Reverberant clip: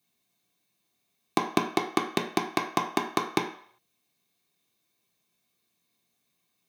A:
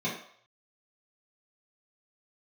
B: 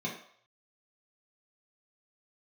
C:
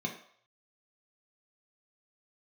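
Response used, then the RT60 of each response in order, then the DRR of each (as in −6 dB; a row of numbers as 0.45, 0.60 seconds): C; 0.60, 0.60, 0.60 seconds; −9.0, −4.5, 0.0 decibels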